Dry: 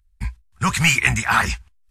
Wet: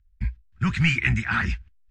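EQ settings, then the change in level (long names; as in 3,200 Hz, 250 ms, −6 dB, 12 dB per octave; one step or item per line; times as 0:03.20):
high-frequency loss of the air 150 metres
flat-topped bell 710 Hz −13.5 dB
high-shelf EQ 2,300 Hz −8.5 dB
0.0 dB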